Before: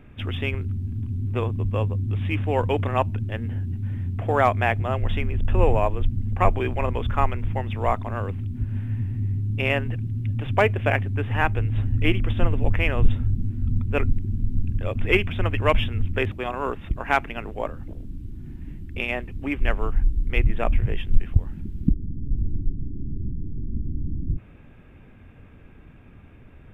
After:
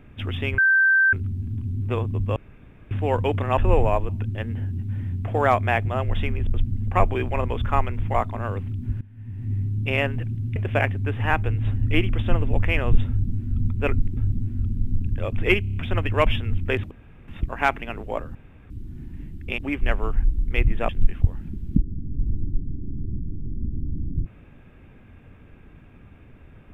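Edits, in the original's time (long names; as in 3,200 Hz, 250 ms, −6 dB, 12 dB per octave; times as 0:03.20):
0:00.58: insert tone 1,560 Hz −14 dBFS 0.55 s
0:01.81–0:02.36: fill with room tone
0:05.48–0:05.99: move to 0:03.03
0:07.59–0:07.86: remove
0:08.73–0:09.25: fade in quadratic, from −20 dB
0:10.28–0:10.67: remove
0:13.20–0:13.68: duplicate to 0:14.28
0:15.24: stutter 0.03 s, 6 plays
0:16.39–0:16.76: fill with room tone
0:17.83–0:18.18: fill with room tone
0:19.06–0:19.37: remove
0:20.68–0:21.01: remove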